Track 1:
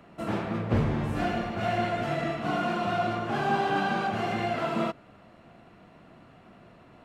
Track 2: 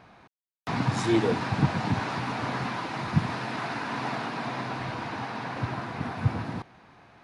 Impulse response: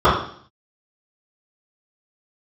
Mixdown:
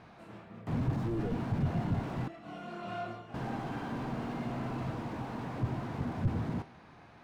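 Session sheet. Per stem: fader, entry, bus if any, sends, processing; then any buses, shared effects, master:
-10.0 dB, 0.00 s, no send, chorus voices 2, 0.85 Hz, delay 25 ms, depth 1 ms; auto duck -6 dB, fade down 0.25 s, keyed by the second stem
+1.0 dB, 0.00 s, muted 2.28–3.34, no send, low shelf 490 Hz +4 dB; resonator 79 Hz, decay 0.34 s, harmonics all, mix 50%; slew limiter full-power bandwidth 6.7 Hz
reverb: off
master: dry

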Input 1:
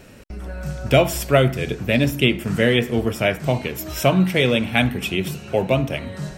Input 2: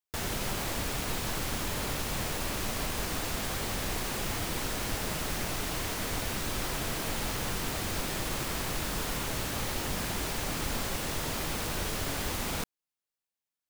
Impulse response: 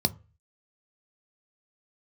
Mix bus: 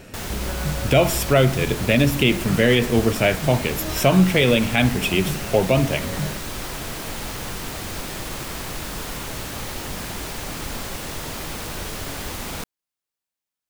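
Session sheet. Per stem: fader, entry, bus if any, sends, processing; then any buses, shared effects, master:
+2.5 dB, 0.00 s, no send, dry
+2.5 dB, 0.00 s, no send, dry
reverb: off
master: limiter -5.5 dBFS, peak gain reduction 6 dB

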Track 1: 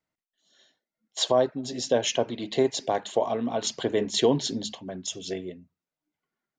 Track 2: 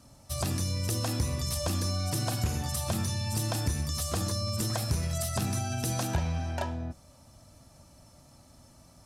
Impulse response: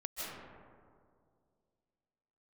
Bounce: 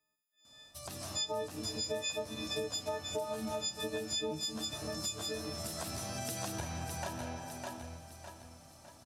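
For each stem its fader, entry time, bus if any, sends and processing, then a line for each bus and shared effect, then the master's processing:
-3.5 dB, 0.00 s, no send, no echo send, frequency quantiser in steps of 6 st; high shelf 5100 Hz -6 dB
-3.5 dB, 0.45 s, send -5 dB, echo send -4.5 dB, low shelf 210 Hz -11.5 dB; auto duck -19 dB, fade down 0.80 s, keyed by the first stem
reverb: on, RT60 2.2 s, pre-delay 0.115 s
echo: feedback echo 0.606 s, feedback 41%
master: compressor 4:1, threshold -36 dBFS, peak gain reduction 15 dB

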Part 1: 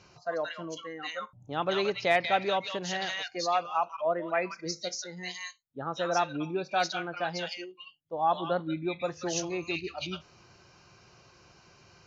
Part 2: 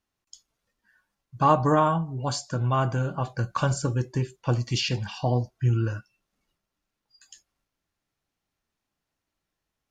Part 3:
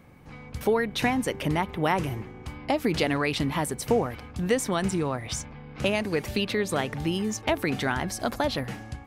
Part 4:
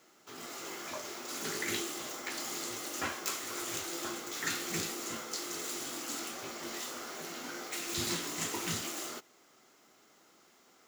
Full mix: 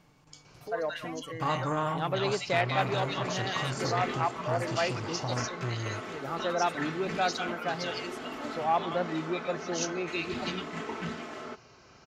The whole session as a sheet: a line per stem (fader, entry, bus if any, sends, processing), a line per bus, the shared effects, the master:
0.0 dB, 0.45 s, no send, dry
-10.5 dB, 0.00 s, no send, per-bin compression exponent 0.6
-11.0 dB, 0.00 s, no send, comb 6.7 ms, depth 95%; auto duck -10 dB, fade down 0.40 s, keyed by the second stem
+3.0 dB, 2.35 s, no send, LPF 1900 Hz 12 dB/oct; comb 4.6 ms, depth 65%; vocal rider within 4 dB 2 s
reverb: off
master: core saturation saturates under 820 Hz

